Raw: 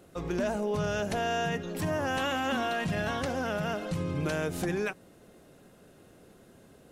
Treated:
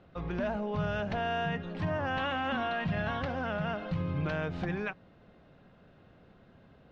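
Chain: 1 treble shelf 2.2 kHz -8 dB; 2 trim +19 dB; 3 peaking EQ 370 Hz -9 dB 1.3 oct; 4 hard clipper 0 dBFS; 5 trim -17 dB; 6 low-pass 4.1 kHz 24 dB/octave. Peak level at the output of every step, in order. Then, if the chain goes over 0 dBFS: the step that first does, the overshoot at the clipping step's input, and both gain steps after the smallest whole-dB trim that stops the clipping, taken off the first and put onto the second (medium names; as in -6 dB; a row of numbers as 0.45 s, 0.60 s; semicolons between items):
-20.5 dBFS, -1.5 dBFS, -4.0 dBFS, -4.0 dBFS, -21.0 dBFS, -21.0 dBFS; nothing clips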